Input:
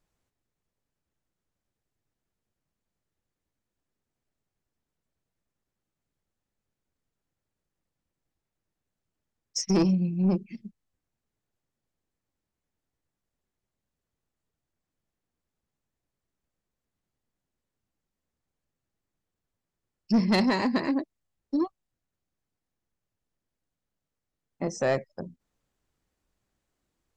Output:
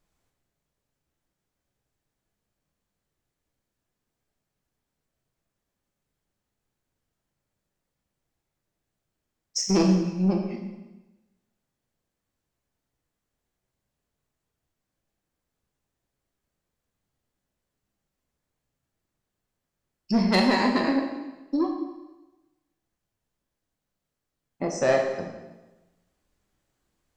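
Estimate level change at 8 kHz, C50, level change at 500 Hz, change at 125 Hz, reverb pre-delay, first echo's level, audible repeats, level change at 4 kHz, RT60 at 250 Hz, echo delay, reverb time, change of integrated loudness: +4.0 dB, 4.5 dB, +4.5 dB, +1.0 dB, 6 ms, none, none, +4.5 dB, 1.0 s, none, 1.1 s, +2.0 dB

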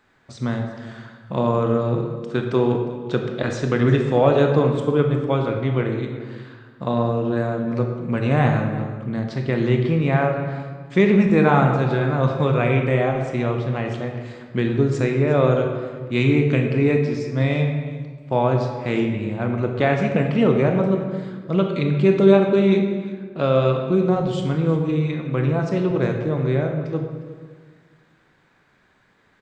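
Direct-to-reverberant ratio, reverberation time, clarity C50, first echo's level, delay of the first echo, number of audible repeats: 3.0 dB, 1.5 s, 4.5 dB, -17.5 dB, 0.357 s, 1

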